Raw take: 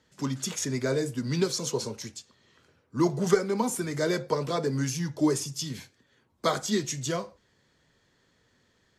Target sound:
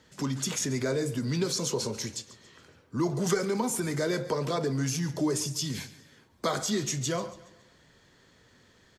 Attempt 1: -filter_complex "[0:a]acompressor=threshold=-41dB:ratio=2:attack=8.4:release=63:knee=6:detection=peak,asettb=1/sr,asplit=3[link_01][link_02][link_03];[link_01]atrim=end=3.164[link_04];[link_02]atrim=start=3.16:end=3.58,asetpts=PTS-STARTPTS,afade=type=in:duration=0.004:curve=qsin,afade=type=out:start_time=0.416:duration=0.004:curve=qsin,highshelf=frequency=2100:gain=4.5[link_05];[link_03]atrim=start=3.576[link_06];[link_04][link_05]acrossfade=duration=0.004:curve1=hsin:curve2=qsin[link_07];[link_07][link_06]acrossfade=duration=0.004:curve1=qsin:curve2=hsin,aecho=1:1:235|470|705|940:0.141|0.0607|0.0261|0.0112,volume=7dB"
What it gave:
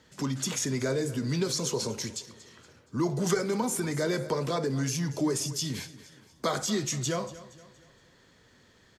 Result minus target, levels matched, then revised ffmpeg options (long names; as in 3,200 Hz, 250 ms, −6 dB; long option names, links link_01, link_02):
echo 95 ms late
-filter_complex "[0:a]acompressor=threshold=-41dB:ratio=2:attack=8.4:release=63:knee=6:detection=peak,asettb=1/sr,asplit=3[link_01][link_02][link_03];[link_01]atrim=end=3.164[link_04];[link_02]atrim=start=3.16:end=3.58,asetpts=PTS-STARTPTS,afade=type=in:duration=0.004:curve=qsin,afade=type=out:start_time=0.416:duration=0.004:curve=qsin,highshelf=frequency=2100:gain=4.5[link_05];[link_03]atrim=start=3.576[link_06];[link_04][link_05]acrossfade=duration=0.004:curve1=hsin:curve2=qsin[link_07];[link_07][link_06]acrossfade=duration=0.004:curve1=qsin:curve2=hsin,aecho=1:1:140|280|420|560:0.141|0.0607|0.0261|0.0112,volume=7dB"